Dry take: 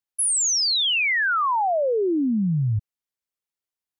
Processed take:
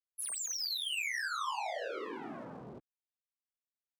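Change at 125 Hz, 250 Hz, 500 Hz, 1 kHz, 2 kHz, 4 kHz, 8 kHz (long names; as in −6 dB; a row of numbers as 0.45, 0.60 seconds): −32.0, −24.5, −18.0, −15.5, −14.5, −15.0, −16.5 decibels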